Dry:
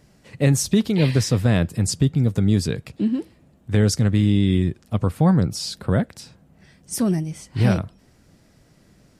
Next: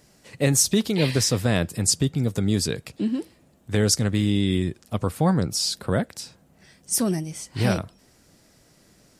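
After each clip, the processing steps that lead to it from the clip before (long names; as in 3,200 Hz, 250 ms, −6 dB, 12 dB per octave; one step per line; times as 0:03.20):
bass and treble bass −6 dB, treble +6 dB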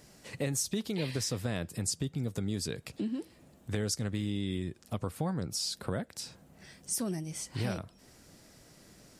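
downward compressor 2.5 to 1, threshold −36 dBFS, peak gain reduction 14 dB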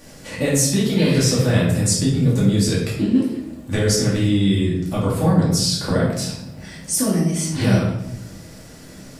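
rectangular room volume 260 cubic metres, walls mixed, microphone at 2.4 metres
level +7.5 dB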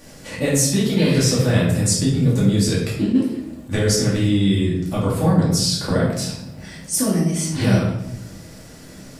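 level that may rise only so fast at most 280 dB per second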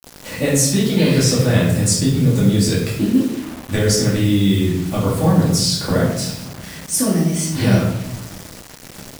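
bit reduction 6 bits
level +2 dB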